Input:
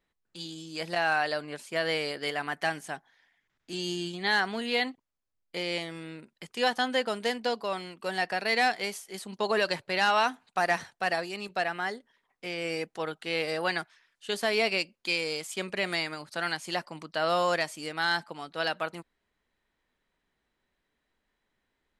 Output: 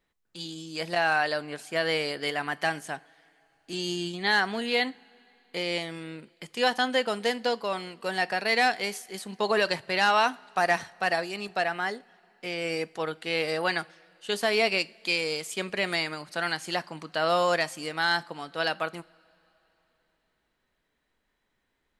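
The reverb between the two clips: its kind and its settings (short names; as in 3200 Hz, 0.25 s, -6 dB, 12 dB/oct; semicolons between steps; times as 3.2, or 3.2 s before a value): two-slope reverb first 0.34 s, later 3.6 s, from -20 dB, DRR 17 dB; gain +2 dB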